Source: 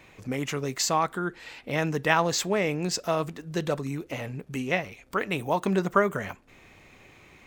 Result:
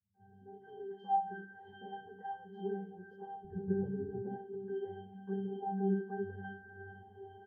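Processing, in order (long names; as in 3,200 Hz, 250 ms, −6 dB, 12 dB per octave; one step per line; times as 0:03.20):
compressor on every frequency bin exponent 0.6
downward compressor 6 to 1, threshold −28 dBFS, peak gain reduction 13.5 dB
high-shelf EQ 7,700 Hz −9.5 dB
mains-hum notches 50/100/150/200/250/300/350/400 Hz
resonances in every octave G, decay 0.62 s
convolution reverb RT60 1.2 s, pre-delay 4 ms, DRR 12.5 dB
automatic gain control gain up to 11 dB
0:03.44–0:04.22: spectral tilt −4.5 dB per octave
three-band delay without the direct sound lows, mids, highs 140/200 ms, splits 170/2,200 Hz
every bin expanded away from the loudest bin 1.5 to 1
level +2 dB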